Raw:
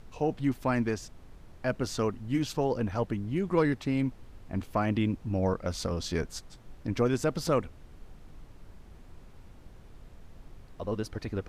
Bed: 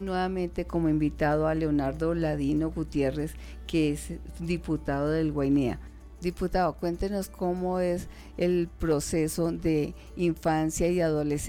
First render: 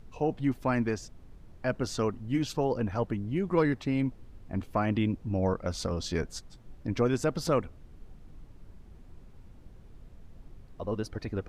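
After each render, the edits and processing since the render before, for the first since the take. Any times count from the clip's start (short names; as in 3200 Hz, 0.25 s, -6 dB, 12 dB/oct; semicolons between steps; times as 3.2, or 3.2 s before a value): denoiser 6 dB, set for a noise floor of -53 dBFS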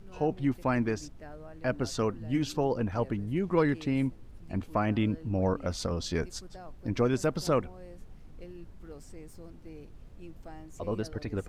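add bed -22 dB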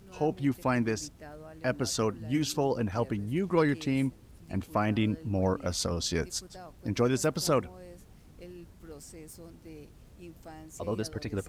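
HPF 48 Hz; high shelf 4700 Hz +11 dB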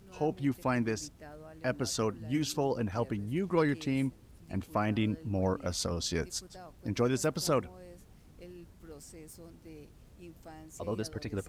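gain -2.5 dB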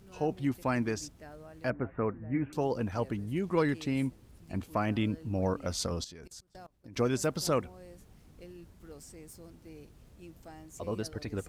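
1.7–2.53 steep low-pass 2300 Hz 72 dB/oct; 6.04–6.96 level quantiser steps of 24 dB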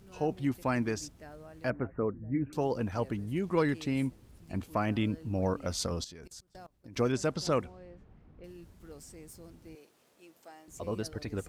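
1.87–2.53 formant sharpening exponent 1.5; 7.12–8.44 low-pass opened by the level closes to 1600 Hz, open at -24.5 dBFS; 9.75–10.68 HPF 440 Hz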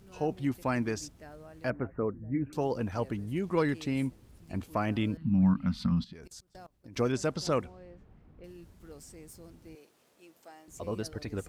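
5.17–6.13 EQ curve 100 Hz 0 dB, 170 Hz +13 dB, 240 Hz +11 dB, 430 Hz -26 dB, 660 Hz -12 dB, 980 Hz -2 dB, 2000 Hz -1 dB, 4100 Hz -4 dB, 6600 Hz -23 dB, 11000 Hz -16 dB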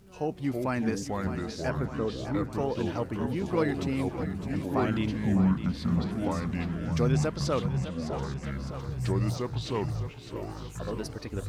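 echoes that change speed 0.274 s, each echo -4 st, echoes 3; thinning echo 0.608 s, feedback 68%, high-pass 170 Hz, level -11 dB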